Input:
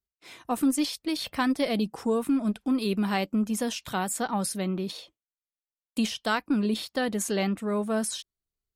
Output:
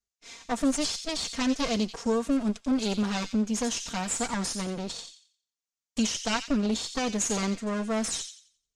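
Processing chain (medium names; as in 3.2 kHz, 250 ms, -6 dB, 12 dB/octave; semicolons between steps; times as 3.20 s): comb filter that takes the minimum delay 4.3 ms; resonant low-pass 6.6 kHz, resonance Q 3.2; feedback echo behind a high-pass 88 ms, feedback 31%, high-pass 2.7 kHz, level -6.5 dB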